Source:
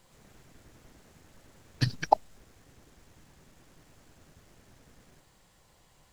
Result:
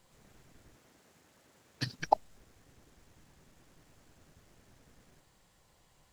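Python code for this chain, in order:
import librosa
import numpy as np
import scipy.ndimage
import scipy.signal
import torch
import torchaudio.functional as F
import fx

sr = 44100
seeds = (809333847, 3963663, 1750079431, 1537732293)

y = fx.highpass(x, sr, hz=260.0, slope=6, at=(0.75, 2.0))
y = y * 10.0 ** (-4.0 / 20.0)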